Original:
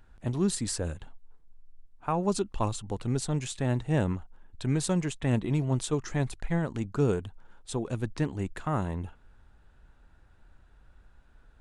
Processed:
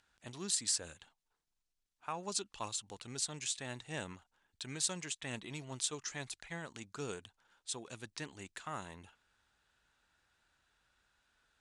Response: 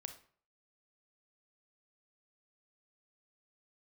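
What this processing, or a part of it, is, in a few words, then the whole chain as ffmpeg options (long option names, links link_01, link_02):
piezo pickup straight into a mixer: -af "lowpass=6200,aderivative,lowshelf=frequency=230:gain=9.5,volume=6.5dB"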